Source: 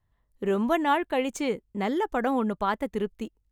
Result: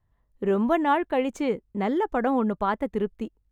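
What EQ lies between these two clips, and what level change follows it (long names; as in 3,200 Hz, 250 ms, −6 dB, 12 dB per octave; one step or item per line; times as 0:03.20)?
high-shelf EQ 2,900 Hz −11.5 dB
+2.5 dB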